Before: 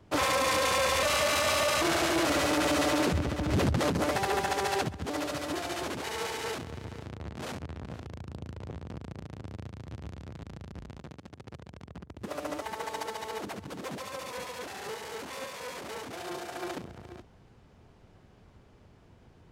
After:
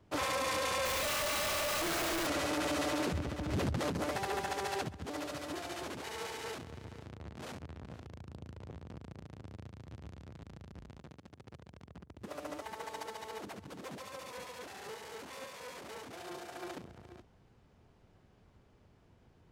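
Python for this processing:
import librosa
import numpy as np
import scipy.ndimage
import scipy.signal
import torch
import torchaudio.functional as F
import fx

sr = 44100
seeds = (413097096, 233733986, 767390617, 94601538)

y = fx.clip_1bit(x, sr, at=(0.85, 2.27))
y = F.gain(torch.from_numpy(y), -7.0).numpy()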